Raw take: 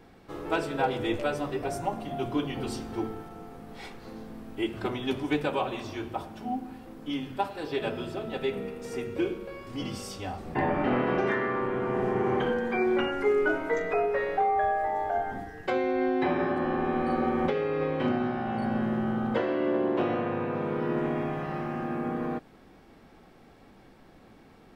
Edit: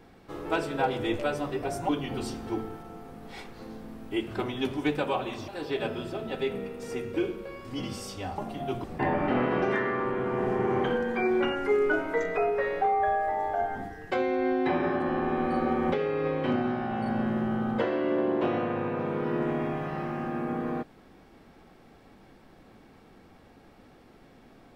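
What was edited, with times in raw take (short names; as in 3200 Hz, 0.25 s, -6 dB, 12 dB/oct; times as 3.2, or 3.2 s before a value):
1.89–2.35 move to 10.4
5.94–7.5 cut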